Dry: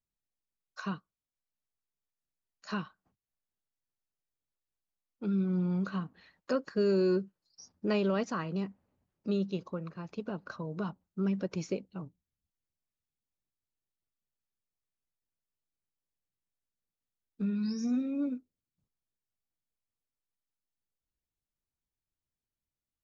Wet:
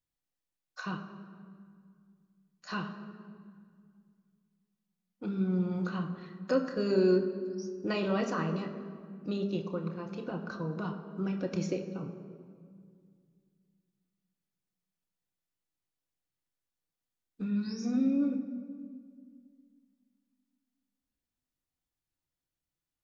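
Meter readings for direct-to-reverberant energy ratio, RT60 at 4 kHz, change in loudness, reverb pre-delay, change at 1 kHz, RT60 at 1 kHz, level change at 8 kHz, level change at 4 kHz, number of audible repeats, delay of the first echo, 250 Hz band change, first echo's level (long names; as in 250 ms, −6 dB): 2.5 dB, 1.4 s, +0.5 dB, 3 ms, +2.0 dB, 1.9 s, can't be measured, +1.5 dB, no echo audible, no echo audible, +1.0 dB, no echo audible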